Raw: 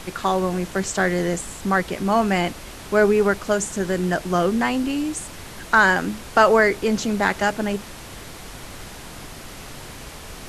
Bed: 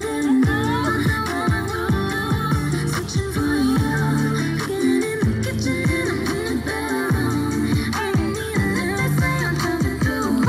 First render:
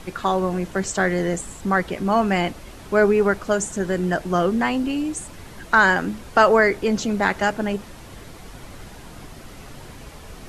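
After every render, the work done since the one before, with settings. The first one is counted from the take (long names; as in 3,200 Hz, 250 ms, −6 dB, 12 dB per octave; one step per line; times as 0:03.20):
broadband denoise 7 dB, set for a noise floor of −38 dBFS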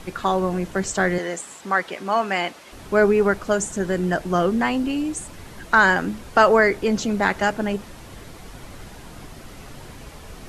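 0:01.18–0:02.72: meter weighting curve A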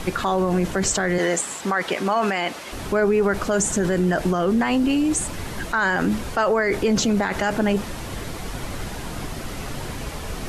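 in parallel at −1 dB: compressor whose output falls as the input rises −28 dBFS, ratio −1
on the sum: brickwall limiter −11.5 dBFS, peak gain reduction 8 dB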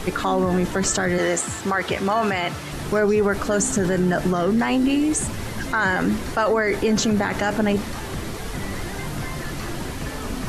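mix in bed −13.5 dB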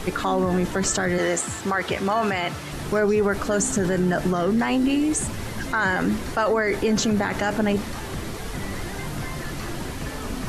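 level −1.5 dB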